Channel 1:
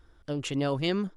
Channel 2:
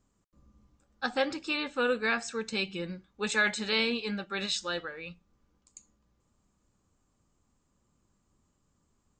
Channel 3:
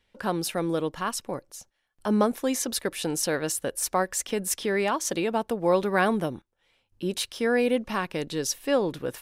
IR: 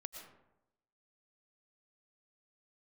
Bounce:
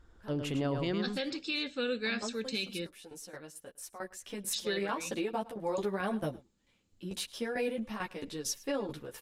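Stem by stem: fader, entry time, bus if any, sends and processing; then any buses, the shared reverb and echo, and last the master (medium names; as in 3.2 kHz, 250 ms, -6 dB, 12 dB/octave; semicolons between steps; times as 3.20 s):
-2.0 dB, 0.00 s, no send, echo send -6.5 dB, treble shelf 4.2 kHz -9.5 dB
-6.5 dB, 0.00 s, muted 2.87–4.53 s, no send, no echo send, ten-band graphic EQ 250 Hz +6 dB, 500 Hz +4 dB, 1 kHz -11 dB, 2 kHz +4 dB, 4 kHz +10 dB
3.89 s -12 dB -> 4.47 s -1 dB, 0.00 s, no send, echo send -22 dB, tremolo saw down 4.5 Hz, depth 80%; three-phase chorus; auto duck -7 dB, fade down 0.45 s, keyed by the first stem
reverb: none
echo: delay 106 ms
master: peak limiter -24 dBFS, peak gain reduction 11 dB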